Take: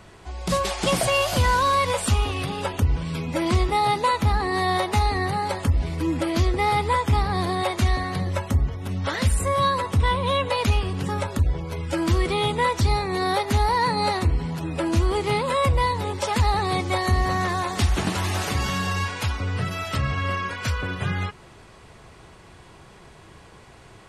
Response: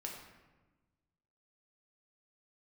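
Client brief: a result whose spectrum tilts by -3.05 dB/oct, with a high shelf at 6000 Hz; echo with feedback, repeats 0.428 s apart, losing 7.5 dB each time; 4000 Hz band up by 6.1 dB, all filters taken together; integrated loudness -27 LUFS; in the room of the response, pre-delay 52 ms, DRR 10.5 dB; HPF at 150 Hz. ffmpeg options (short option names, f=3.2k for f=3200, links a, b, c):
-filter_complex "[0:a]highpass=150,equalizer=f=4k:t=o:g=4.5,highshelf=f=6k:g=8.5,aecho=1:1:428|856|1284|1712|2140:0.422|0.177|0.0744|0.0312|0.0131,asplit=2[a][b];[1:a]atrim=start_sample=2205,adelay=52[c];[b][c]afir=irnorm=-1:irlink=0,volume=-9dB[d];[a][d]amix=inputs=2:normalize=0,volume=-5dB"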